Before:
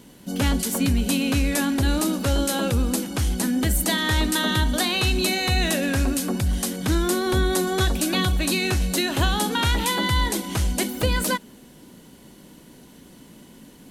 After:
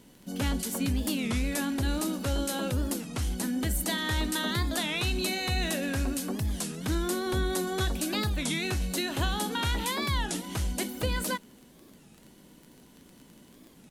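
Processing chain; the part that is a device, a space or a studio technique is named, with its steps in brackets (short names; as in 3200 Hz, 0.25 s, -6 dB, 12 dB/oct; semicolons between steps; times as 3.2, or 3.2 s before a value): warped LP (record warp 33 1/3 rpm, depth 250 cents; crackle 22/s -32 dBFS; pink noise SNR 41 dB); gain -7.5 dB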